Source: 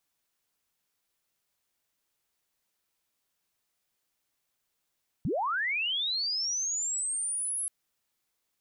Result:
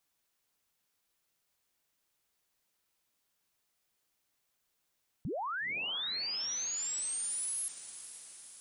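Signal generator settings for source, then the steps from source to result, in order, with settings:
glide linear 110 Hz → 11,000 Hz −26.5 dBFS → −29.5 dBFS 2.43 s
brickwall limiter −33.5 dBFS
feedback delay with all-pass diffusion 490 ms, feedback 61%, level −13.5 dB

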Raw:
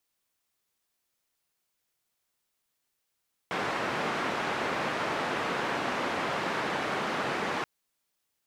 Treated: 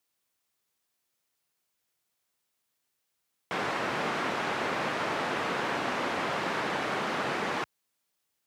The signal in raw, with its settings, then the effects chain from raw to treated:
band-limited noise 170–1,500 Hz, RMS −31 dBFS 4.13 s
high-pass filter 63 Hz

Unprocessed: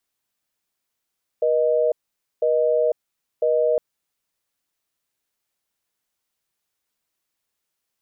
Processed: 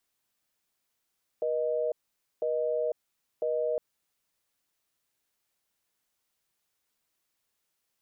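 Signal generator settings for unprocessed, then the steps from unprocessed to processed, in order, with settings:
call progress tone busy tone, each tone −19 dBFS 2.36 s
brickwall limiter −23 dBFS

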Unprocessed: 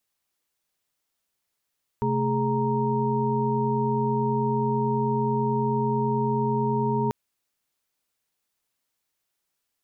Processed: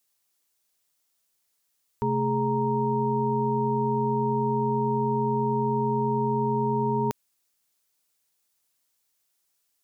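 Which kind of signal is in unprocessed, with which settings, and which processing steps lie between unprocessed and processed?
held notes C3/A3/G#4/A#5 sine, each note −27 dBFS 5.09 s
bass and treble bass −2 dB, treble +7 dB

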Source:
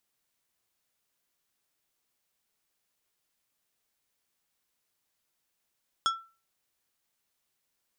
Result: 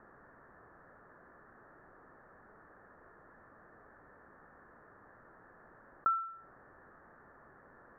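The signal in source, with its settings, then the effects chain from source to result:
struck glass plate, lowest mode 1,340 Hz, decay 0.34 s, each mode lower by 4.5 dB, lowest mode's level −21 dB
Chebyshev low-pass with heavy ripple 1,800 Hz, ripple 3 dB
envelope flattener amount 50%

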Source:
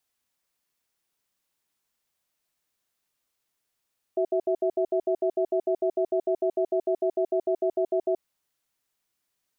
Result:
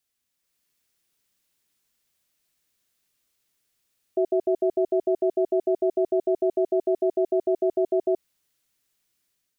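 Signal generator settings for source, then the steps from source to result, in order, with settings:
tone pair in a cadence 373 Hz, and 656 Hz, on 0.08 s, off 0.07 s, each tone −24 dBFS 4.05 s
parametric band 880 Hz −7 dB 1.5 octaves
automatic gain control gain up to 6 dB

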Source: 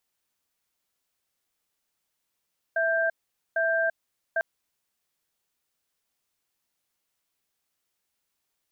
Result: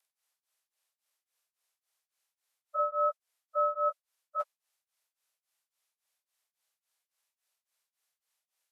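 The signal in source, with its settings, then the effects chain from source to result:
tone pair in a cadence 659 Hz, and 1,580 Hz, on 0.34 s, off 0.46 s, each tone −24.5 dBFS 1.65 s
partials spread apart or drawn together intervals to 89%
high-pass filter 510 Hz 24 dB per octave
tremolo along a rectified sine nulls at 3.6 Hz

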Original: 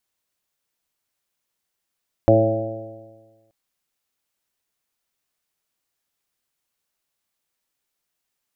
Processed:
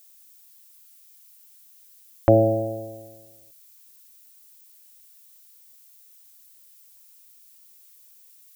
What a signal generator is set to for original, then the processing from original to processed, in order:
stiff-string partials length 1.23 s, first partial 109 Hz, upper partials −8/0/−7.5/4/−1/−12 dB, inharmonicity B 0.0015, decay 1.41 s, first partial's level −16 dB
low-pass that shuts in the quiet parts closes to 590 Hz, open at −25.5 dBFS
background noise violet −53 dBFS

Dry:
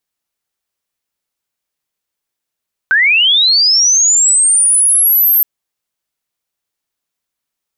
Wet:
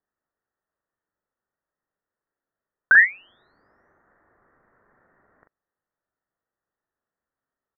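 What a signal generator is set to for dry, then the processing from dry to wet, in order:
glide linear 1,500 Hz → 13,000 Hz −7 dBFS → −7 dBFS 2.52 s
one scale factor per block 7 bits
Chebyshev low-pass with heavy ripple 1,900 Hz, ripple 3 dB
double-tracking delay 41 ms −5 dB

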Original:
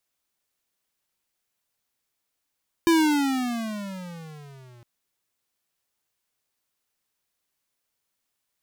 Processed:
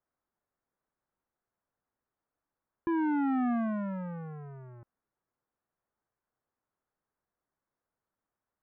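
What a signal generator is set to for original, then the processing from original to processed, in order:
pitch glide with a swell square, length 1.96 s, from 339 Hz, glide −18.5 semitones, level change −33 dB, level −17 dB
adaptive Wiener filter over 9 samples
low-pass filter 1,600 Hz 24 dB per octave
brickwall limiter −26 dBFS

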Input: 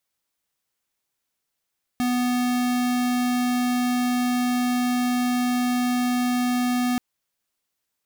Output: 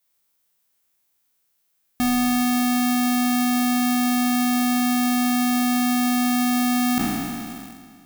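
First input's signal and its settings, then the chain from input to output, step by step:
tone square 247 Hz −22.5 dBFS 4.98 s
peak hold with a decay on every bin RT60 2.35 s
in parallel at −10.5 dB: bit-depth reduction 6 bits, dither none
on the sum: high-shelf EQ 11,000 Hz +11 dB

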